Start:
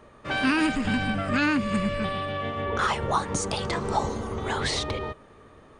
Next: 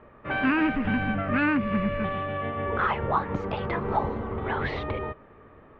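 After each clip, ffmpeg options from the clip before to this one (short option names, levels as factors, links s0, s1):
-af "lowpass=f=2500:w=0.5412,lowpass=f=2500:w=1.3066"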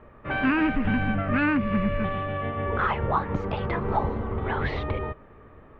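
-af "lowshelf=f=90:g=8.5"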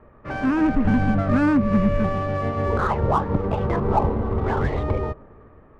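-filter_complex "[0:a]acrossover=split=1200[s0][s1];[s0]dynaudnorm=f=100:g=11:m=2[s2];[s1]alimiter=level_in=2:limit=0.0631:level=0:latency=1:release=441,volume=0.501[s3];[s2][s3]amix=inputs=2:normalize=0,adynamicsmooth=sensitivity=6:basefreq=2300"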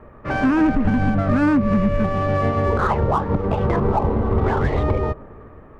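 -af "alimiter=limit=0.158:level=0:latency=1:release=298,volume=2.11"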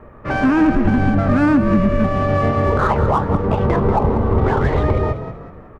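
-filter_complex "[0:a]asplit=5[s0][s1][s2][s3][s4];[s1]adelay=189,afreqshift=37,volume=0.282[s5];[s2]adelay=378,afreqshift=74,volume=0.0955[s6];[s3]adelay=567,afreqshift=111,volume=0.0327[s7];[s4]adelay=756,afreqshift=148,volume=0.0111[s8];[s0][s5][s6][s7][s8]amix=inputs=5:normalize=0,volume=1.33"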